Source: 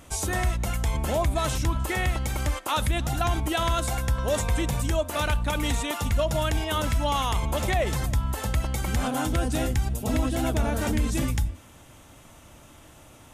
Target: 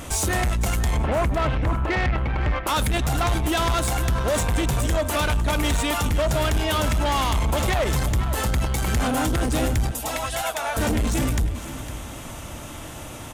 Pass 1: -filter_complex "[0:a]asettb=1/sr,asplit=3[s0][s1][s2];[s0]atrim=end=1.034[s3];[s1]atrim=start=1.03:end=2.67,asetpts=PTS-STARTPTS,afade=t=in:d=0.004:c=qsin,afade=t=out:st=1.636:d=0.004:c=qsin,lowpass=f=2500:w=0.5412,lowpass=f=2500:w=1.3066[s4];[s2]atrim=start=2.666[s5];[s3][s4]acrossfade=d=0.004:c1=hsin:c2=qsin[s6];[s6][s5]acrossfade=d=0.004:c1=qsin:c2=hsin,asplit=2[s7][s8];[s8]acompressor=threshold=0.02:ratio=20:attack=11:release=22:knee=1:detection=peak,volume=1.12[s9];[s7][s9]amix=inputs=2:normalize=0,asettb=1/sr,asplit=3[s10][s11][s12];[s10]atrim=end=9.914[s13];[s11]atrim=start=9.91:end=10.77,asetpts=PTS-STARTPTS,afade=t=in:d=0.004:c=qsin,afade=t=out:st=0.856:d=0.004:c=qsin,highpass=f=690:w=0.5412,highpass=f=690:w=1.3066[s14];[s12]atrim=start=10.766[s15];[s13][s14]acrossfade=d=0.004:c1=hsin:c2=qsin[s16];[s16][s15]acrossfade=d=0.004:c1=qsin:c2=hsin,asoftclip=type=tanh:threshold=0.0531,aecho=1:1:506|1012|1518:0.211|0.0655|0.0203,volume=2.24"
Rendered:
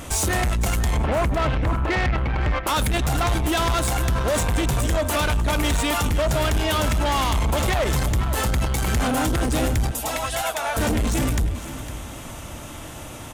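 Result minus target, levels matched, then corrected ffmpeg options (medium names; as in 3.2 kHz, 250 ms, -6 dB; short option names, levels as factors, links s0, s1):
compression: peak gain reduction -9 dB
-filter_complex "[0:a]asettb=1/sr,asplit=3[s0][s1][s2];[s0]atrim=end=1.034[s3];[s1]atrim=start=1.03:end=2.67,asetpts=PTS-STARTPTS,afade=t=in:d=0.004:c=qsin,afade=t=out:st=1.636:d=0.004:c=qsin,lowpass=f=2500:w=0.5412,lowpass=f=2500:w=1.3066[s4];[s2]atrim=start=2.666[s5];[s3][s4]acrossfade=d=0.004:c1=hsin:c2=qsin[s6];[s6][s5]acrossfade=d=0.004:c1=qsin:c2=hsin,asplit=2[s7][s8];[s8]acompressor=threshold=0.00668:ratio=20:attack=11:release=22:knee=1:detection=peak,volume=1.12[s9];[s7][s9]amix=inputs=2:normalize=0,asettb=1/sr,asplit=3[s10][s11][s12];[s10]atrim=end=9.914[s13];[s11]atrim=start=9.91:end=10.77,asetpts=PTS-STARTPTS,afade=t=in:d=0.004:c=qsin,afade=t=out:st=0.856:d=0.004:c=qsin,highpass=f=690:w=0.5412,highpass=f=690:w=1.3066[s14];[s12]atrim=start=10.766[s15];[s13][s14]acrossfade=d=0.004:c1=hsin:c2=qsin[s16];[s16][s15]acrossfade=d=0.004:c1=qsin:c2=hsin,asoftclip=type=tanh:threshold=0.0531,aecho=1:1:506|1012|1518:0.211|0.0655|0.0203,volume=2.24"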